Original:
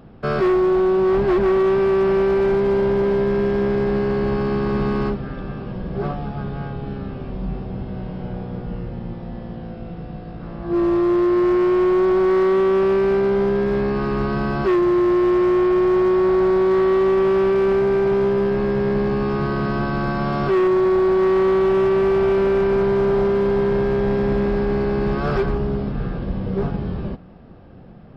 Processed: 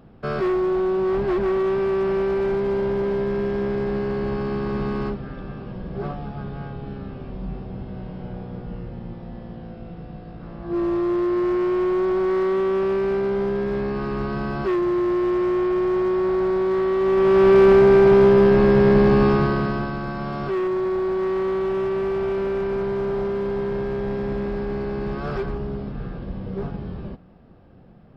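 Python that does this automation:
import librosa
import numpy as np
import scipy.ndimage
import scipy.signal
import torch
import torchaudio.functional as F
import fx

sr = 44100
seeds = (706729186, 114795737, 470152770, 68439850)

y = fx.gain(x, sr, db=fx.line((16.96, -4.5), (17.55, 5.0), (19.26, 5.0), (20.0, -6.5)))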